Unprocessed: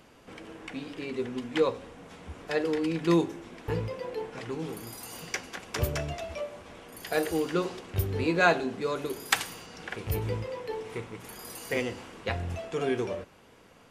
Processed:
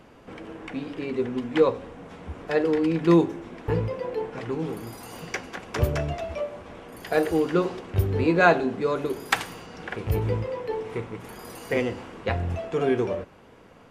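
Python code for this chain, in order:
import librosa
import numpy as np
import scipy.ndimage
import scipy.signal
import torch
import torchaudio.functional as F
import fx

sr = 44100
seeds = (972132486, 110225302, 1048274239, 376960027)

y = fx.high_shelf(x, sr, hz=2800.0, db=-11.0)
y = y * 10.0 ** (6.0 / 20.0)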